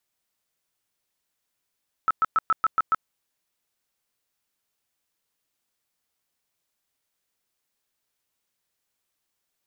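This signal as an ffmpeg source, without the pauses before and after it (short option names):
-f lavfi -i "aevalsrc='0.15*sin(2*PI*1310*mod(t,0.14))*lt(mod(t,0.14),35/1310)':d=0.98:s=44100"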